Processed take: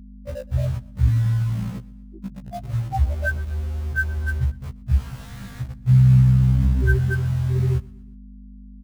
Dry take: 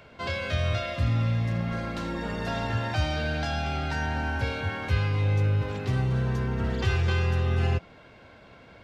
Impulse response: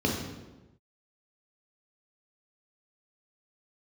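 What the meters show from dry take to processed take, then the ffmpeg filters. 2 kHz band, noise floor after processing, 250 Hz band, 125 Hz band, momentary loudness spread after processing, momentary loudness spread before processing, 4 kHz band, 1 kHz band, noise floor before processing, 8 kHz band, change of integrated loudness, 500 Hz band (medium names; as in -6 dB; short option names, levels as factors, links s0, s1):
+2.5 dB, -41 dBFS, +4.0 dB, +7.0 dB, 20 LU, 6 LU, under -10 dB, -4.5 dB, -51 dBFS, no reading, +6.5 dB, -3.5 dB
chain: -filter_complex "[0:a]afftfilt=real='re*gte(hypot(re,im),0.224)':imag='im*gte(hypot(re,im),0.224)':win_size=1024:overlap=0.75,highpass=50,equalizer=f=1300:w=0.41:g=10,bandreject=f=3200:w=15,aexciter=amount=6.6:drive=5.5:freq=5100,asplit=2[s0][s1];[s1]acrusher=bits=5:mix=0:aa=0.000001,volume=0.299[s2];[s0][s2]amix=inputs=2:normalize=0,aeval=exprs='val(0)+0.00631*(sin(2*PI*50*n/s)+sin(2*PI*2*50*n/s)/2+sin(2*PI*3*50*n/s)/3+sin(2*PI*4*50*n/s)/4+sin(2*PI*5*50*n/s)/5)':c=same,asplit=2[s3][s4];[s4]aecho=0:1:121|242|363:0.075|0.0345|0.0159[s5];[s3][s5]amix=inputs=2:normalize=0,afftfilt=real='re*1.73*eq(mod(b,3),0)':imag='im*1.73*eq(mod(b,3),0)':win_size=2048:overlap=0.75,volume=2.66"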